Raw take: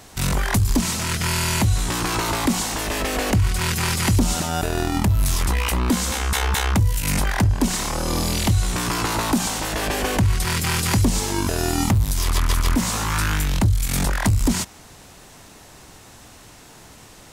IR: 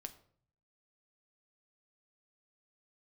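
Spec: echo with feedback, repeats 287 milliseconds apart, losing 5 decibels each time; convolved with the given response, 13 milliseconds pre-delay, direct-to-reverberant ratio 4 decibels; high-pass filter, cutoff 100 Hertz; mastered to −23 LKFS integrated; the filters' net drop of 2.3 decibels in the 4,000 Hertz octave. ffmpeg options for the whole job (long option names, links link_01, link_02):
-filter_complex "[0:a]highpass=100,equalizer=frequency=4000:width_type=o:gain=-3,aecho=1:1:287|574|861|1148|1435|1722|2009:0.562|0.315|0.176|0.0988|0.0553|0.031|0.0173,asplit=2[link_01][link_02];[1:a]atrim=start_sample=2205,adelay=13[link_03];[link_02][link_03]afir=irnorm=-1:irlink=0,volume=0.5dB[link_04];[link_01][link_04]amix=inputs=2:normalize=0,volume=-3dB"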